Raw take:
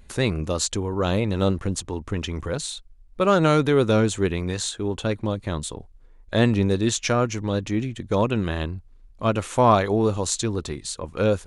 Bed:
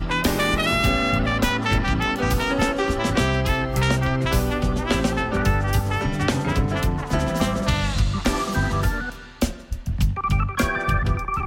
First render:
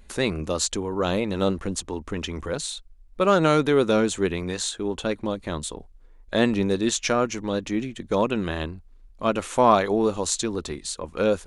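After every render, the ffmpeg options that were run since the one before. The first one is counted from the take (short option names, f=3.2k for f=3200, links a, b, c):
-af "equalizer=f=110:t=o:w=0.6:g=-13.5"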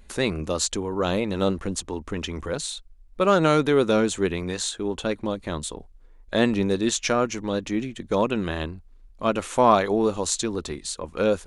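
-af anull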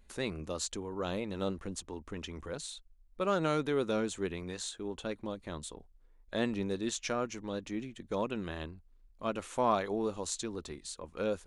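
-af "volume=-11.5dB"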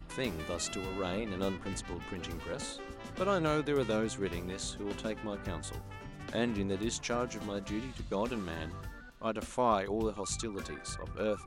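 -filter_complex "[1:a]volume=-23dB[a];[0:a][a]amix=inputs=2:normalize=0"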